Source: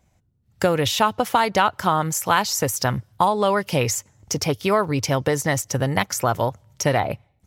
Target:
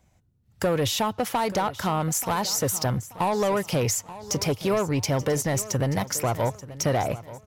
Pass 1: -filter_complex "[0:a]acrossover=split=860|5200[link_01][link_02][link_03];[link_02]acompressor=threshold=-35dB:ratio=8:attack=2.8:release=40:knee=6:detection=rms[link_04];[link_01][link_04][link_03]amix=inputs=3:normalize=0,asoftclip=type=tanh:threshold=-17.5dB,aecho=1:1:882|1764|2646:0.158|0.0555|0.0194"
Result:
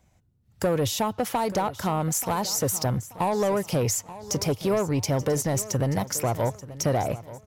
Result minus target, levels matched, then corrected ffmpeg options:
downward compressor: peak gain reduction +8 dB
-filter_complex "[0:a]acrossover=split=860|5200[link_01][link_02][link_03];[link_02]acompressor=threshold=-26dB:ratio=8:attack=2.8:release=40:knee=6:detection=rms[link_04];[link_01][link_04][link_03]amix=inputs=3:normalize=0,asoftclip=type=tanh:threshold=-17.5dB,aecho=1:1:882|1764|2646:0.158|0.0555|0.0194"

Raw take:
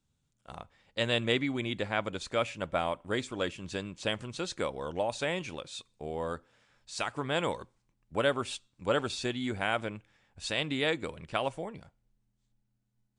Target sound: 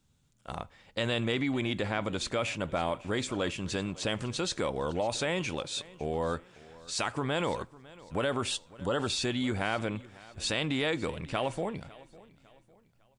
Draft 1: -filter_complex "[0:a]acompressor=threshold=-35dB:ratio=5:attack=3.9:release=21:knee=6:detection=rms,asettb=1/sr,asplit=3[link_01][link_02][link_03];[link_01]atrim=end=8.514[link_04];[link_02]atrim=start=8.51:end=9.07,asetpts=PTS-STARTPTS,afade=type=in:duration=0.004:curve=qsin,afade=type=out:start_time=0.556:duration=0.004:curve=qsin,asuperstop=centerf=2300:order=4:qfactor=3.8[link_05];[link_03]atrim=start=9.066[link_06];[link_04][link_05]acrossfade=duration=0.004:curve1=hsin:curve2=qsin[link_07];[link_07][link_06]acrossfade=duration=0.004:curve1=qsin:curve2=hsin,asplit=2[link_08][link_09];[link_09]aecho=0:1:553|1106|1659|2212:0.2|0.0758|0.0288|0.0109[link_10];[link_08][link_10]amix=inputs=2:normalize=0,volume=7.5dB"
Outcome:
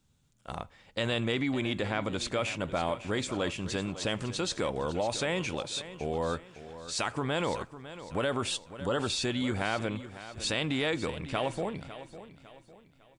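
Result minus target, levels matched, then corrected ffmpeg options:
echo-to-direct +7 dB
-filter_complex "[0:a]acompressor=threshold=-35dB:ratio=5:attack=3.9:release=21:knee=6:detection=rms,asettb=1/sr,asplit=3[link_01][link_02][link_03];[link_01]atrim=end=8.514[link_04];[link_02]atrim=start=8.51:end=9.07,asetpts=PTS-STARTPTS,afade=type=in:duration=0.004:curve=qsin,afade=type=out:start_time=0.556:duration=0.004:curve=qsin,asuperstop=centerf=2300:order=4:qfactor=3.8[link_05];[link_03]atrim=start=9.066[link_06];[link_04][link_05]acrossfade=duration=0.004:curve1=hsin:curve2=qsin[link_07];[link_07][link_06]acrossfade=duration=0.004:curve1=qsin:curve2=hsin,asplit=2[link_08][link_09];[link_09]aecho=0:1:553|1106|1659:0.0891|0.0339|0.0129[link_10];[link_08][link_10]amix=inputs=2:normalize=0,volume=7.5dB"

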